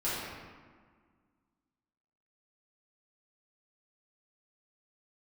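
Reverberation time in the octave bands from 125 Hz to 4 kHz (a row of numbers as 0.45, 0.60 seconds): 1.9, 2.3, 1.6, 1.7, 1.4, 0.95 seconds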